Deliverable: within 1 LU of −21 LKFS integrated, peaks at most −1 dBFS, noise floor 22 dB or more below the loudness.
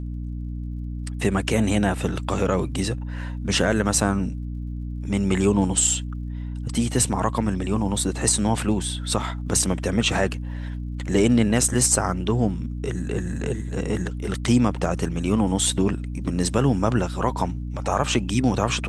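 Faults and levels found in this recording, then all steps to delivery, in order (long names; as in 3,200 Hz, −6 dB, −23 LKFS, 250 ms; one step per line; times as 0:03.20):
crackle rate 46 per second; mains hum 60 Hz; hum harmonics up to 300 Hz; level of the hum −27 dBFS; integrated loudness −23.5 LKFS; sample peak −5.0 dBFS; target loudness −21.0 LKFS
→ click removal
hum removal 60 Hz, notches 5
level +2.5 dB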